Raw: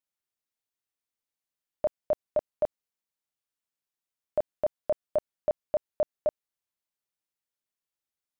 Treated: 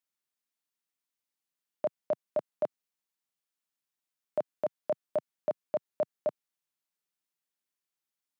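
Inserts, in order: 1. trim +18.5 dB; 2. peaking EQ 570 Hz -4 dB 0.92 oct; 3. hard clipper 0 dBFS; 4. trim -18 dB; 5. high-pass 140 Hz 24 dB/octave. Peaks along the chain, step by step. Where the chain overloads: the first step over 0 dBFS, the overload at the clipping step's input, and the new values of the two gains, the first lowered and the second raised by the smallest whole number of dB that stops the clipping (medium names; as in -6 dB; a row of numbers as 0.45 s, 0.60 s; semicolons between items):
-0.5 dBFS, -2.0 dBFS, -2.0 dBFS, -20.0 dBFS, -20.0 dBFS; nothing clips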